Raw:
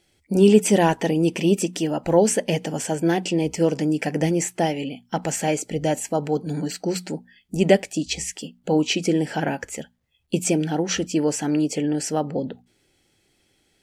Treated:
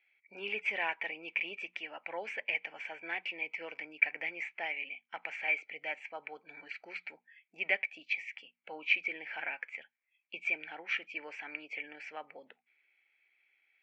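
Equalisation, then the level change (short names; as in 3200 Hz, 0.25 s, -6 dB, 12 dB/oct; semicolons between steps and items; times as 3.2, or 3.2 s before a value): HPF 1000 Hz 12 dB/oct; ladder low-pass 2400 Hz, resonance 85%; 0.0 dB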